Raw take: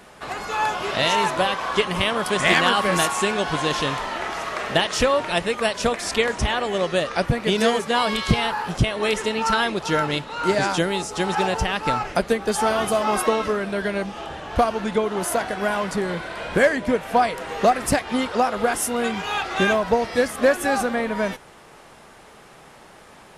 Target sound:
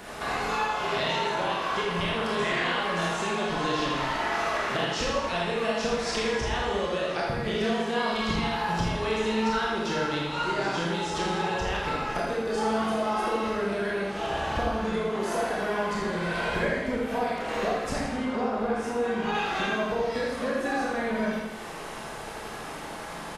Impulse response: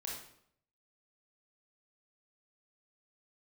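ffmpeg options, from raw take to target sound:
-filter_complex "[0:a]acrossover=split=6500[a][b];[b]acompressor=threshold=-51dB:ratio=4:attack=1:release=60[c];[a][c]amix=inputs=2:normalize=0,asettb=1/sr,asplit=3[d][e][f];[d]atrim=end=18.014[g];[e]atrim=start=18.01:end=19.35,asetpts=PTS-STARTPTS,afade=t=in:d=0.004:c=qsin,afade=t=out:st=1.336:d=0.004:c=qsin,highshelf=f=2.3k:g=-10.5[h];[f]atrim=start=19.346[i];[g][h]acrossfade=d=0.004:c1=hsin:c2=qsin[j];[j][i]acrossfade=d=0.004:c1=qsin:c2=hsin,acompressor=threshold=-35dB:ratio=6,aecho=1:1:82|164|246|328|410|492|574|656:0.473|0.279|0.165|0.0972|0.0573|0.0338|0.02|0.0118[k];[1:a]atrim=start_sample=2205[l];[k][l]afir=irnorm=-1:irlink=0,volume=8.5dB"

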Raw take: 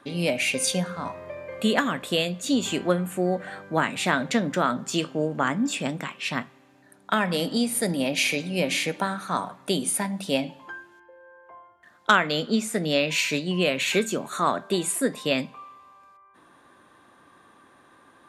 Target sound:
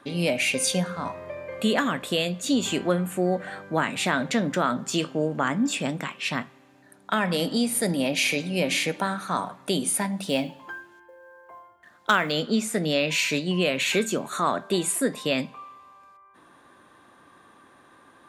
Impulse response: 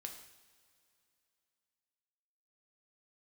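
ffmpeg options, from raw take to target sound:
-filter_complex "[0:a]asplit=2[a][b];[b]alimiter=limit=-16.5dB:level=0:latency=1:release=16,volume=-1dB[c];[a][c]amix=inputs=2:normalize=0,asettb=1/sr,asplit=3[d][e][f];[d]atrim=end=10.214[g];[e]atrim=start=10.21:end=12.32,asetpts=PTS-STARTPTS,afade=t=in:d=0.004:c=qsin,afade=t=out:st=2.106:d=0.004:c=qsin,acrusher=bits=8:mode=log:mix=0:aa=0.000001[h];[f]atrim=start=12.316[i];[g][h]acrossfade=d=0.004:c1=hsin:c2=qsin[j];[j][i]acrossfade=d=0.004:c1=qsin:c2=hsin,volume=-4.5dB"

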